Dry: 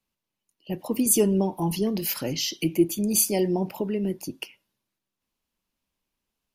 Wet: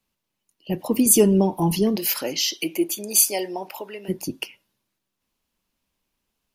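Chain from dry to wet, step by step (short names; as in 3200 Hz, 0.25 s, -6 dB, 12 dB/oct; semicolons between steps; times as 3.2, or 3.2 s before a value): 1.95–4.08 HPF 320 Hz -> 880 Hz 12 dB/oct; gain +5 dB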